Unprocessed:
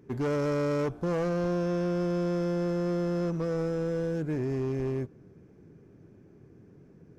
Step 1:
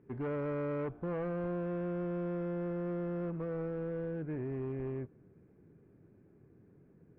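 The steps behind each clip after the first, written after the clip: LPF 2500 Hz 24 dB/oct; gain -7.5 dB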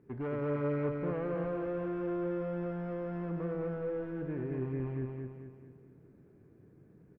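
feedback echo 0.22 s, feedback 46%, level -3.5 dB

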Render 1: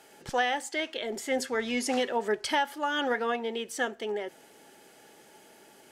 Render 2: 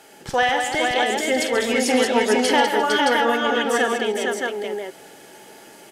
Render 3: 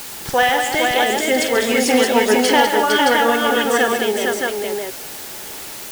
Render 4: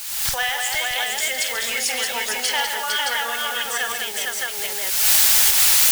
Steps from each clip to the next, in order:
tapped delay 47/137/200/351/457/620 ms -9/-10.5/-7/-17/-3.5/-3.5 dB; gain +7 dB
requantised 6-bit, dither triangular; gain +3.5 dB
recorder AGC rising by 46 dB/s; passive tone stack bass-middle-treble 10-0-10

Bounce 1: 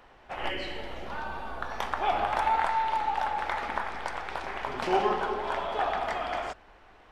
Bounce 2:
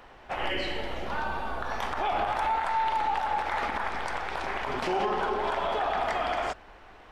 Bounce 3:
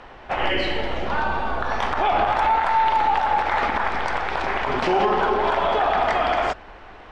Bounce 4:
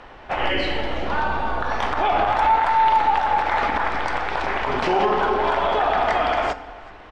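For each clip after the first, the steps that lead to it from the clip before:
limiter -24 dBFS, peak gain reduction 10 dB; gain +4.5 dB
air absorption 79 m; gain +8.5 dB
echo 0.375 s -23 dB; FDN reverb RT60 1.2 s, low-frequency decay 1×, high-frequency decay 0.6×, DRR 13 dB

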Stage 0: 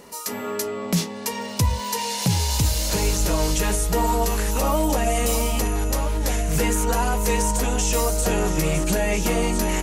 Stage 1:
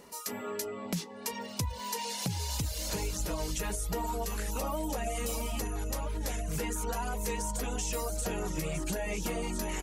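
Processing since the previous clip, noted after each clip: reverb removal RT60 0.62 s; compressor, threshold -22 dBFS, peak gain reduction 6.5 dB; gain -7.5 dB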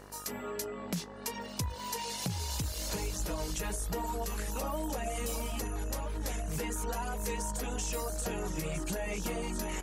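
buzz 50 Hz, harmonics 37, -51 dBFS -3 dB/oct; gain -1.5 dB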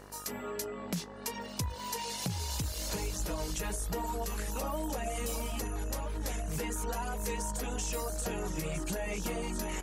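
nothing audible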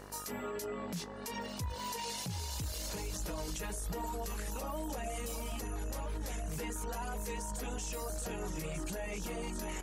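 limiter -31.5 dBFS, peak gain reduction 10.5 dB; gain +1 dB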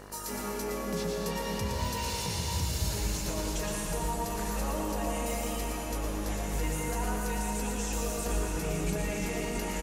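echo 0.115 s -5 dB; reverb RT60 3.1 s, pre-delay 91 ms, DRR -1 dB; gain +2.5 dB

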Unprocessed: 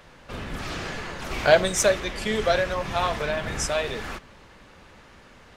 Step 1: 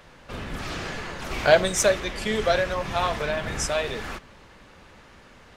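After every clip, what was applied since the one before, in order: nothing audible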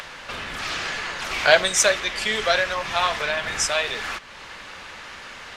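high shelf 9900 Hz -12 dB; in parallel at +2 dB: upward compressor, threshold -26 dBFS; on the sum: tilt shelf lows -9 dB, about 680 Hz; gain -7 dB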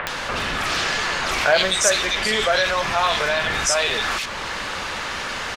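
bands offset in time lows, highs 70 ms, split 2300 Hz; fast leveller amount 50%; gain -2 dB

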